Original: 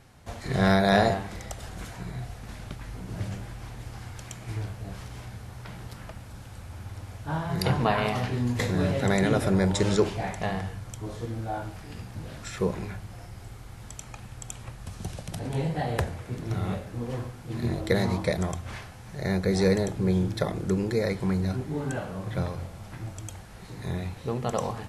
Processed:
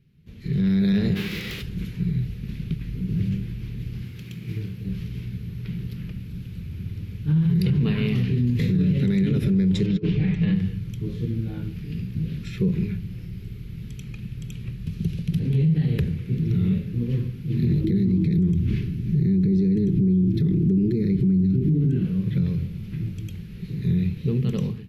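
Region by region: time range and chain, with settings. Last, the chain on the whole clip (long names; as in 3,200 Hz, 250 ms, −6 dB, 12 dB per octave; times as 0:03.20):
0:01.15–0:01.61: spectral envelope flattened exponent 0.6 + mid-hump overdrive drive 21 dB, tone 3,400 Hz, clips at −19.5 dBFS
0:04.04–0:04.86: variable-slope delta modulation 64 kbit/s + high-pass filter 150 Hz 6 dB per octave
0:09.86–0:10.55: low-pass filter 3,800 Hz + comb filter 6.5 ms, depth 55% + compressor whose output falls as the input rises −27 dBFS, ratio −0.5
0:17.84–0:22.05: downward compressor 5 to 1, threshold −32 dBFS + low shelf with overshoot 440 Hz +8 dB, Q 3
whole clip: drawn EQ curve 110 Hz 0 dB, 160 Hz +12 dB, 280 Hz −3 dB, 420 Hz −2 dB, 680 Hz −30 dB, 1,700 Hz −13 dB, 2,500 Hz −3 dB, 4,300 Hz −8 dB, 8,900 Hz −23 dB, 13,000 Hz −2 dB; brickwall limiter −20.5 dBFS; automatic gain control gain up to 15 dB; level −8.5 dB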